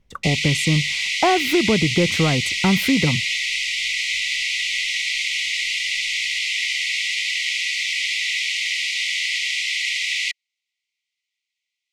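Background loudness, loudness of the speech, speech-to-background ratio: −21.0 LKFS, −21.0 LKFS, 0.0 dB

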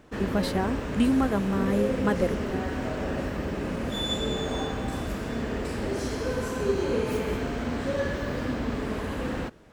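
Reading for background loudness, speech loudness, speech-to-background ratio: −30.0 LKFS, −27.5 LKFS, 2.5 dB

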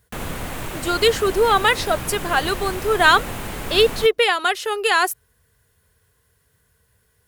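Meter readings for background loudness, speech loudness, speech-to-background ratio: −30.0 LKFS, −18.5 LKFS, 11.5 dB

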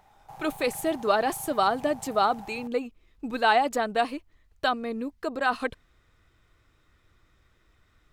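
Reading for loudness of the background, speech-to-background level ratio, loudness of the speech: −46.0 LKFS, 19.0 dB, −27.0 LKFS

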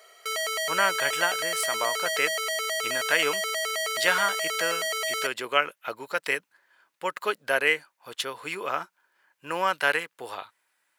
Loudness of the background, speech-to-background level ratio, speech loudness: −27.5 LKFS, −0.5 dB, −28.0 LKFS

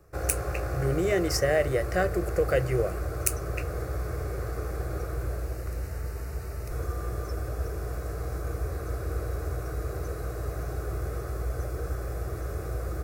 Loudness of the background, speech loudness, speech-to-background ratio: −34.0 LKFS, −28.0 LKFS, 6.0 dB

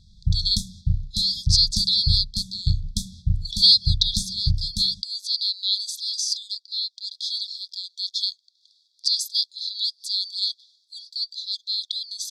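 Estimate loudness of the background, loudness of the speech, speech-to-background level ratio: −28.5 LKFS, −23.0 LKFS, 5.5 dB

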